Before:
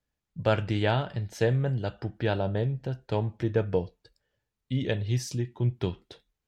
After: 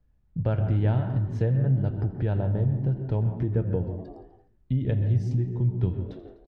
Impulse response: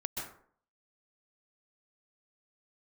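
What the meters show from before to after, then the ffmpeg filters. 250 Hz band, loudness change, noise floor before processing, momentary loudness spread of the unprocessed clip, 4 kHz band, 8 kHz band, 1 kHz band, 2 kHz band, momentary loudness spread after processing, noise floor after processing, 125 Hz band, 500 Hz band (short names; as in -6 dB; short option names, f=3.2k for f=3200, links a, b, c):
+2.0 dB, +3.0 dB, -85 dBFS, 8 LU, under -15 dB, n/a, -6.5 dB, under -10 dB, 8 LU, -63 dBFS, +5.5 dB, -4.0 dB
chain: -filter_complex "[0:a]aemphasis=mode=reproduction:type=riaa,asplit=6[a][b][c][d][e][f];[b]adelay=84,afreqshift=63,volume=-19dB[g];[c]adelay=168,afreqshift=126,volume=-23.3dB[h];[d]adelay=252,afreqshift=189,volume=-27.6dB[i];[e]adelay=336,afreqshift=252,volume=-31.9dB[j];[f]adelay=420,afreqshift=315,volume=-36.2dB[k];[a][g][h][i][j][k]amix=inputs=6:normalize=0,acompressor=threshold=-37dB:ratio=2,asplit=2[l][m];[1:a]atrim=start_sample=2205,afade=t=out:st=0.32:d=0.01,atrim=end_sample=14553,lowpass=2.4k[n];[m][n]afir=irnorm=-1:irlink=0,volume=-5.5dB[o];[l][o]amix=inputs=2:normalize=0,volume=1.5dB"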